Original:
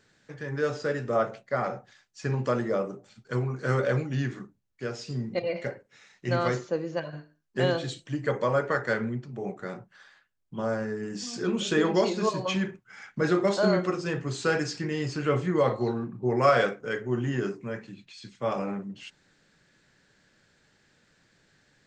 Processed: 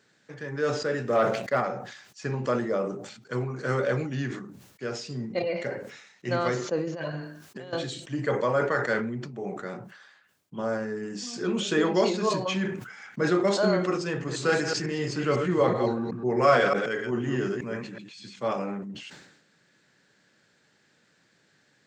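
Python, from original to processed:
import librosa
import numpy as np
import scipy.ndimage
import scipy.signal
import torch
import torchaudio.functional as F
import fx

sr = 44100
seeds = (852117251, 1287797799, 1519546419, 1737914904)

y = fx.leveller(x, sr, passes=1, at=(1.04, 1.61))
y = fx.over_compress(y, sr, threshold_db=-36.0, ratio=-1.0, at=(6.87, 7.73))
y = fx.reverse_delay(y, sr, ms=125, wet_db=-5.0, at=(14.11, 18.48))
y = scipy.signal.sosfilt(scipy.signal.butter(2, 140.0, 'highpass', fs=sr, output='sos'), y)
y = fx.sustainer(y, sr, db_per_s=63.0)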